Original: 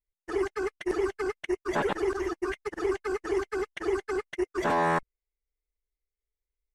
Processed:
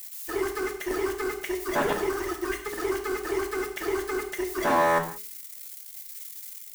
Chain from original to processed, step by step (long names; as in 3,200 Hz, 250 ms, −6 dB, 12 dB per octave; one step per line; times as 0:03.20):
spike at every zero crossing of −32 dBFS
mains-hum notches 60/120/180/240/300/360/420 Hz
reverb whose tail is shaped and stops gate 210 ms falling, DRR 3 dB
level +1 dB